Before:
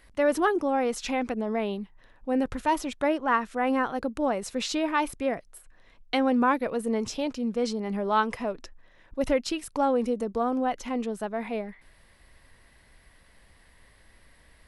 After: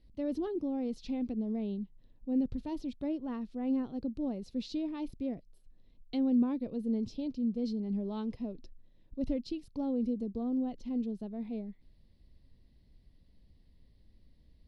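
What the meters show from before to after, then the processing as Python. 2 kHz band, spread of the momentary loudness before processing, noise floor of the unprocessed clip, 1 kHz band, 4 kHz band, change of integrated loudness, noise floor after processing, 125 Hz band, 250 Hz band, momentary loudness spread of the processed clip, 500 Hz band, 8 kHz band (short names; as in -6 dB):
under -25 dB, 9 LU, -59 dBFS, -22.0 dB, -15.0 dB, -7.5 dB, -64 dBFS, -2.0 dB, -3.0 dB, 8 LU, -13.0 dB, under -20 dB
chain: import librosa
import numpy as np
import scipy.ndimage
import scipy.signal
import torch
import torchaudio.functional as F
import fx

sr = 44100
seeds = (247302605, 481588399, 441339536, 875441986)

y = fx.curve_eq(x, sr, hz=(250.0, 1500.0, 4400.0, 7500.0), db=(0, -29, -9, -26))
y = y * 10.0 ** (-2.0 / 20.0)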